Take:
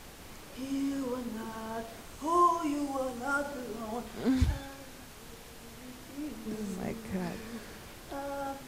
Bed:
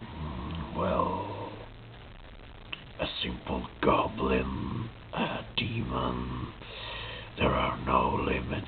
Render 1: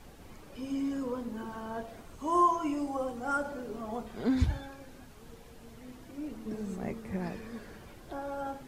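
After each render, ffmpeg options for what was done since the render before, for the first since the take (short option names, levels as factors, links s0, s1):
-af "afftdn=nr=9:nf=-49"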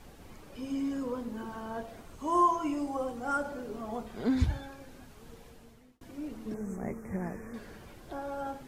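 -filter_complex "[0:a]asettb=1/sr,asplit=3[s0][s1][s2];[s0]atrim=end=6.544[s3];[s1]atrim=start=6.54:end=7.54,asetpts=PTS-STARTPTS,afade=t=in:d=0.004:c=qsin,afade=t=out:st=0.996:d=0.004:c=qsin,asuperstop=centerf=3600:order=8:qfactor=1[s4];[s2]atrim=start=7.536[s5];[s3][s4]acrossfade=d=0.004:c1=hsin:c2=qsin[s6];[s6][s5]acrossfade=d=0.004:c1=qsin:c2=hsin,asplit=2[s7][s8];[s7]atrim=end=6.01,asetpts=PTS-STARTPTS,afade=t=out:st=5.45:d=0.56[s9];[s8]atrim=start=6.01,asetpts=PTS-STARTPTS,afade=t=in:d=0.004:c=hsin[s10];[s9][s10]concat=n=2:v=0:a=1"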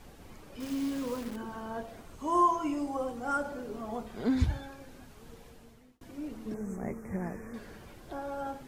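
-filter_complex "[0:a]asettb=1/sr,asplit=3[s0][s1][s2];[s0]atrim=end=0.604[s3];[s1]atrim=start=0.6:end=1.36,asetpts=PTS-STARTPTS,afade=t=in:d=0.004:c=qsin,afade=t=out:st=0.756:d=0.004:c=qsin,acrusher=bits=8:dc=4:mix=0:aa=0.000001[s4];[s2]atrim=start=1.356[s5];[s3][s4]acrossfade=d=0.004:c1=hsin:c2=qsin[s6];[s6][s5]acrossfade=d=0.004:c1=qsin:c2=hsin"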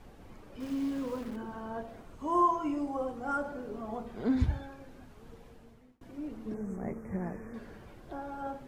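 -af "highshelf=f=3000:g=-10,bandreject=f=79.79:t=h:w=4,bandreject=f=159.58:t=h:w=4,bandreject=f=239.37:t=h:w=4,bandreject=f=319.16:t=h:w=4,bandreject=f=398.95:t=h:w=4,bandreject=f=478.74:t=h:w=4,bandreject=f=558.53:t=h:w=4,bandreject=f=638.32:t=h:w=4,bandreject=f=718.11:t=h:w=4,bandreject=f=797.9:t=h:w=4,bandreject=f=877.69:t=h:w=4,bandreject=f=957.48:t=h:w=4,bandreject=f=1037.27:t=h:w=4,bandreject=f=1117.06:t=h:w=4,bandreject=f=1196.85:t=h:w=4,bandreject=f=1276.64:t=h:w=4,bandreject=f=1356.43:t=h:w=4,bandreject=f=1436.22:t=h:w=4,bandreject=f=1516.01:t=h:w=4,bandreject=f=1595.8:t=h:w=4,bandreject=f=1675.59:t=h:w=4,bandreject=f=1755.38:t=h:w=4,bandreject=f=1835.17:t=h:w=4,bandreject=f=1914.96:t=h:w=4,bandreject=f=1994.75:t=h:w=4,bandreject=f=2074.54:t=h:w=4,bandreject=f=2154.33:t=h:w=4,bandreject=f=2234.12:t=h:w=4,bandreject=f=2313.91:t=h:w=4,bandreject=f=2393.7:t=h:w=4,bandreject=f=2473.49:t=h:w=4,bandreject=f=2553.28:t=h:w=4"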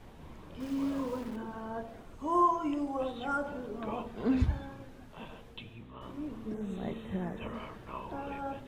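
-filter_complex "[1:a]volume=0.141[s0];[0:a][s0]amix=inputs=2:normalize=0"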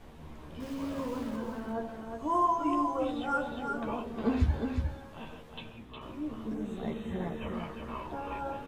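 -filter_complex "[0:a]asplit=2[s0][s1];[s1]adelay=13,volume=0.531[s2];[s0][s2]amix=inputs=2:normalize=0,asplit=2[s3][s4];[s4]aecho=0:1:360:0.562[s5];[s3][s5]amix=inputs=2:normalize=0"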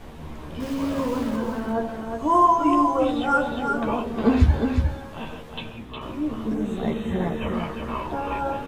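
-af "volume=3.16"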